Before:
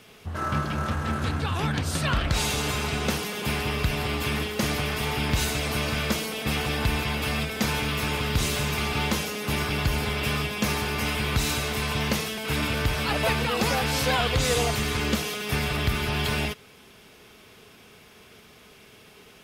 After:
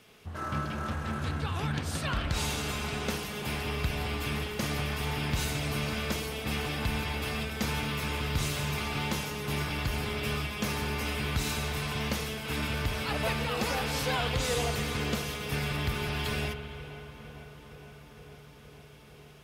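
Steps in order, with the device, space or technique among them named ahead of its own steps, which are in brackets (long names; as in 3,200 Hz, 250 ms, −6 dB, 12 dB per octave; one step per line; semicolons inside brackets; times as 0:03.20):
dub delay into a spring reverb (feedback echo with a low-pass in the loop 460 ms, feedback 82%, low-pass 2,800 Hz, level −17 dB; spring reverb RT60 3.4 s, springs 55 ms, chirp 40 ms, DRR 9 dB)
level −6.5 dB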